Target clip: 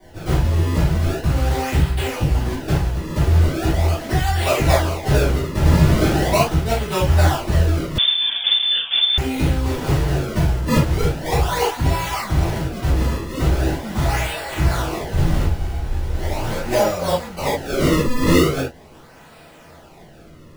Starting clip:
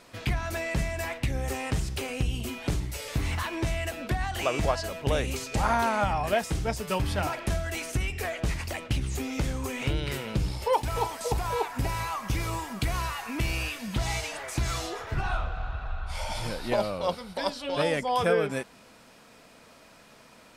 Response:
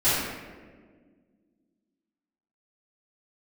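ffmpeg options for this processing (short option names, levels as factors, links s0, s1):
-filter_complex "[0:a]acrusher=samples=33:mix=1:aa=0.000001:lfo=1:lforange=52.8:lforate=0.4[s0];[1:a]atrim=start_sample=2205,atrim=end_sample=3969[s1];[s0][s1]afir=irnorm=-1:irlink=0,asettb=1/sr,asplit=3[s2][s3][s4];[s2]atrim=end=7.984[s5];[s3]atrim=start=7.98:end=9.18,asetpts=PTS-STARTPTS,afade=t=in:d=0.004:c=qsin,afade=t=out:st=1.196:d=0.004:c=qsin,lowpass=f=3100:t=q:w=0.5098,lowpass=f=3100:t=q:w=0.6013,lowpass=f=3100:t=q:w=0.9,lowpass=f=3100:t=q:w=2.563,afreqshift=-3600[s6];[s4]atrim=start=9.176[s7];[s5][s6]acrossfade=d=0.004:c1=hsin:c2=qsin[s8];[s8][s7]acrossfade=d=0.004:c1=qsin:c2=hsin,volume=0.562"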